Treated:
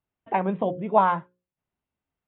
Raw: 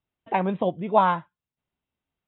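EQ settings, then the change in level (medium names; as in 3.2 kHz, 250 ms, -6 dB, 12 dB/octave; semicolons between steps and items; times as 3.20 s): low-pass 2.4 kHz 12 dB/octave; hum notches 60/120/180/240/300/360/420/480/540 Hz; 0.0 dB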